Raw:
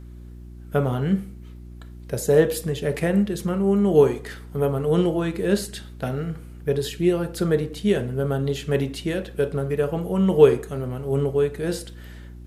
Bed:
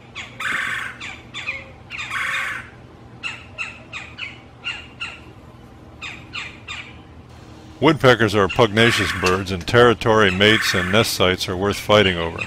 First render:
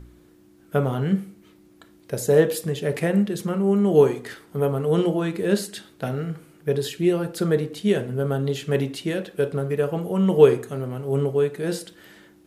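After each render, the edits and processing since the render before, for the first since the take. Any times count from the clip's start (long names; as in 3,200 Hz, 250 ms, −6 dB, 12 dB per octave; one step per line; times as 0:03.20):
hum removal 60 Hz, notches 4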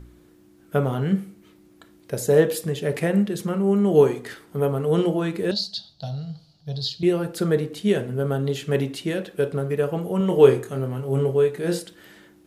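0:05.51–0:07.03: drawn EQ curve 140 Hz 0 dB, 380 Hz −24 dB, 700 Hz −3 dB, 1,200 Hz −17 dB, 2,200 Hz −21 dB, 4,400 Hz +14 dB, 8,500 Hz −19 dB
0:10.18–0:11.80: double-tracking delay 23 ms −6.5 dB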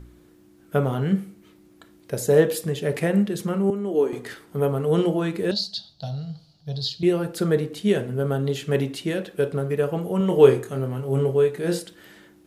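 0:03.70–0:04.13: four-pole ladder high-pass 220 Hz, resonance 40%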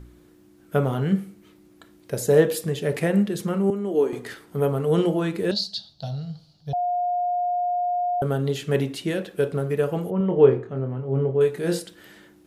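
0:06.73–0:08.22: beep over 712 Hz −21 dBFS
0:10.10–0:11.41: head-to-tape spacing loss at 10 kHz 38 dB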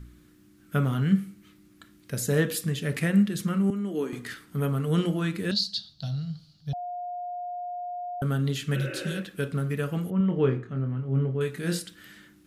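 0:08.77–0:09.14: healed spectral selection 250–3,000 Hz after
flat-topped bell 580 Hz −10.5 dB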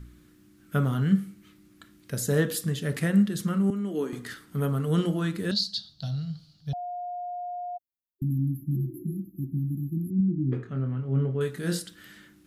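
0:07.77–0:10.52: time-frequency box erased 380–11,000 Hz
dynamic equaliser 2,400 Hz, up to −7 dB, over −55 dBFS, Q 3.2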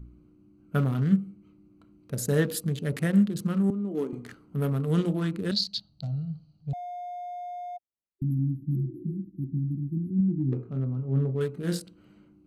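adaptive Wiener filter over 25 samples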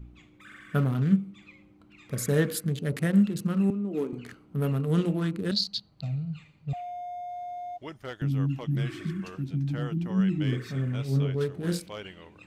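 mix in bed −26.5 dB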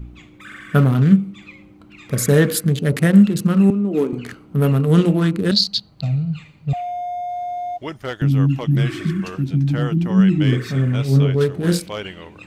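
level +11 dB
brickwall limiter −3 dBFS, peak gain reduction 2.5 dB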